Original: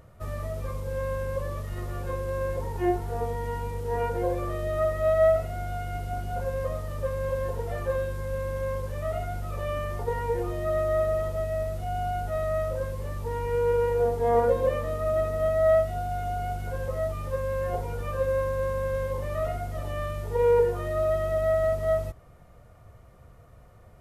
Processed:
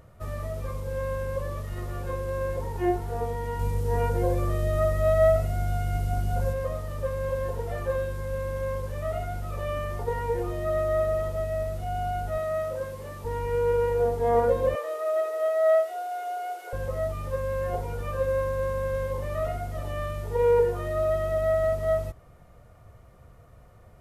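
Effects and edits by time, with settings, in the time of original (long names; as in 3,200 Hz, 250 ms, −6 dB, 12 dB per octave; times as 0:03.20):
0:03.59–0:06.53: bass and treble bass +7 dB, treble +5 dB
0:12.38–0:13.25: high-pass filter 190 Hz 6 dB per octave
0:14.75–0:16.73: Butterworth high-pass 360 Hz 48 dB per octave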